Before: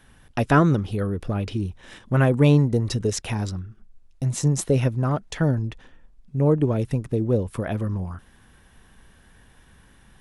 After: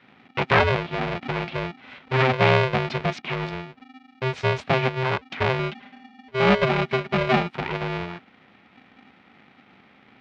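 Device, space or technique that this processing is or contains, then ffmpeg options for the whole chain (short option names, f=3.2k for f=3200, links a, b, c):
ring modulator pedal into a guitar cabinet: -filter_complex "[0:a]aeval=exprs='val(0)*sgn(sin(2*PI*260*n/s))':c=same,highpass=110,equalizer=f=310:t=q:w=4:g=-8,equalizer=f=470:t=q:w=4:g=-4,equalizer=f=2.3k:t=q:w=4:g=6,lowpass=f=3.8k:w=0.5412,lowpass=f=3.8k:w=1.3066,asettb=1/sr,asplit=3[a][b][c];[a]atrim=end=5.594[d];[b]atrim=start=5.59:end=7.49,asetpts=PTS-STARTPTS,afade=t=in:d=0.004:c=qsin,afade=t=out:st=1.896:d=0.004:c=qsin,aecho=1:1:5:0.84,atrim=end_sample=83790[e];[c]atrim=start=7.486[f];[d][e]acrossfade=d=0.004:c1=hsin:c2=qsin[g];[g][f]acrossfade=d=0.004:c1=qsin:c2=hsin"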